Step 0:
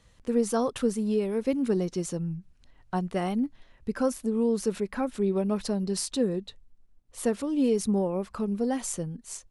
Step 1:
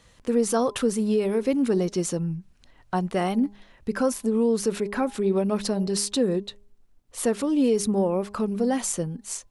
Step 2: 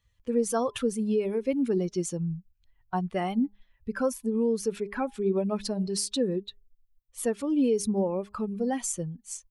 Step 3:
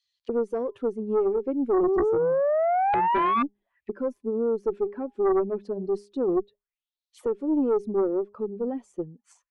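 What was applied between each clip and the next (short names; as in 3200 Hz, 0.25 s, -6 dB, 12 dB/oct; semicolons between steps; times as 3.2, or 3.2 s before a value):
low shelf 150 Hz -7 dB; in parallel at +1.5 dB: limiter -24 dBFS, peak gain reduction 9 dB; on the sum: de-hum 203.9 Hz, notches 5
per-bin expansion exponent 1.5; gain -1.5 dB
auto-wah 370–4600 Hz, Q 4.9, down, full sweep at -31 dBFS; painted sound rise, 1.83–3.43, 360–1200 Hz -32 dBFS; added harmonics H 4 -14 dB, 5 -10 dB, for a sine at -18 dBFS; gain +2.5 dB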